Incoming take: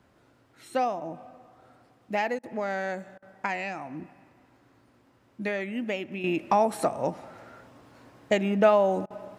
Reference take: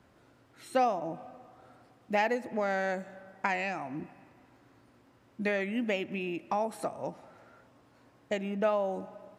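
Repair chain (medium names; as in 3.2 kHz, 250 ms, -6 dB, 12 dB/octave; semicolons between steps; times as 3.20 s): interpolate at 2.39/3.18/9.06 s, 42 ms; gain correction -8.5 dB, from 6.24 s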